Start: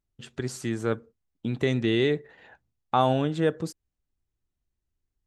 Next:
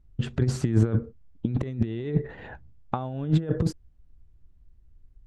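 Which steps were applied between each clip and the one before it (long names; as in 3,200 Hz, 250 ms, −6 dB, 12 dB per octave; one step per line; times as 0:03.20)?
RIAA equalisation playback
compressor whose output falls as the input rises −25 dBFS, ratio −0.5
level +2 dB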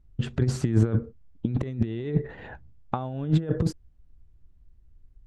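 no processing that can be heard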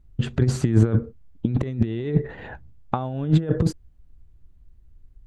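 notch filter 5,400 Hz, Q 16
level +4 dB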